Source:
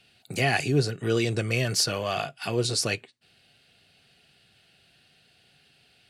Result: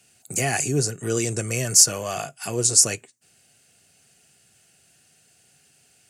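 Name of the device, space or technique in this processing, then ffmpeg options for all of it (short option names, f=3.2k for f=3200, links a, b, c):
budget condenser microphone: -af "highpass=63,highshelf=f=5.2k:t=q:w=3:g=10.5"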